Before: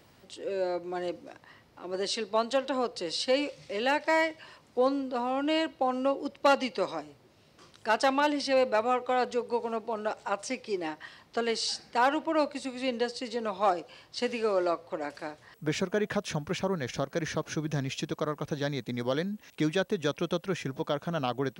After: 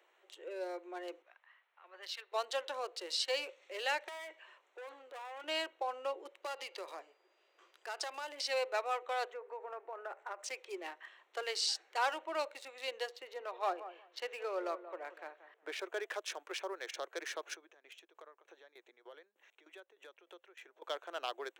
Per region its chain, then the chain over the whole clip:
1.22–2.32 HPF 1100 Hz + air absorption 170 m
4.08–5.44 bell 170 Hz -7.5 dB 1.5 oct + compressor, threshold -27 dBFS + hard clip -35 dBFS
6.42–8.37 compressor, threshold -29 dBFS + whine 4800 Hz -48 dBFS
9.32–10.44 resonant high shelf 2500 Hz -10 dB, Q 1.5 + compressor 5:1, threshold -29 dBFS
13.09–15.79 air absorption 130 m + darkening echo 0.18 s, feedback 18%, low-pass 1800 Hz, level -12 dB
17.54–20.82 notches 50/100/150 Hz + compressor 3:1, threshold -40 dBFS + tremolo saw down 3.3 Hz, depth 85%
whole clip: Wiener smoothing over 9 samples; Chebyshev high-pass 350 Hz, order 5; tilt shelf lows -6 dB; gain -7 dB

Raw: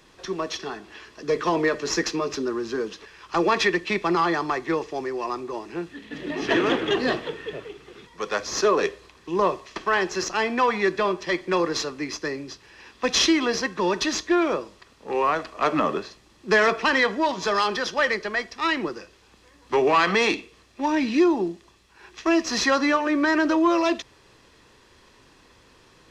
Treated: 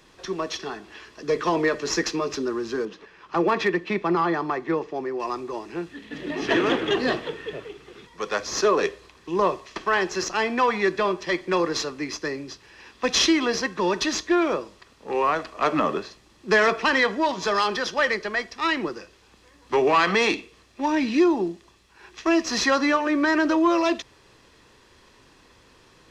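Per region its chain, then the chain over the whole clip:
2.85–5.2 LPF 1800 Hz 6 dB/oct + resonant low shelf 120 Hz -6.5 dB, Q 1.5 + hard clip -13 dBFS
whole clip: dry

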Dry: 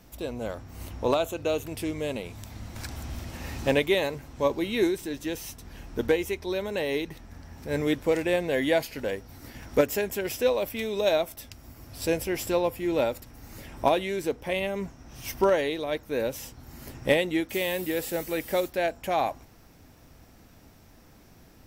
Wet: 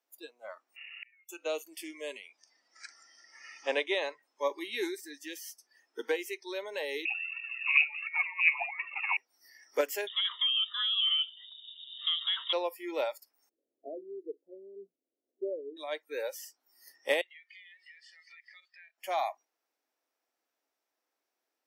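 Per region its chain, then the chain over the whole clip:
0.76–1.29 flipped gate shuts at -27 dBFS, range -41 dB + inverted band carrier 2800 Hz + spectral compressor 2:1
2.28–4.23 LPF 6500 Hz + notch 4300 Hz
7.05–9.17 negative-ratio compressor -29 dBFS, ratio -0.5 + phaser 1.4 Hz, delay 2.6 ms, feedback 78% + inverted band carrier 2700 Hz
10.07–12.53 bell 680 Hz +9.5 dB 1.3 oct + compressor 16:1, threshold -21 dBFS + inverted band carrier 3700 Hz
13.49–15.77 inverse Chebyshev low-pass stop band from 970 Hz + low shelf 120 Hz -8 dB + de-hum 57.62 Hz, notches 6
17.21–18.98 Butterworth band-pass 2600 Hz, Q 0.72 + compressor 10:1, threshold -43 dBFS
whole clip: spectral noise reduction 22 dB; Bessel high-pass 550 Hz, order 8; high shelf 12000 Hz -3 dB; gain -3.5 dB

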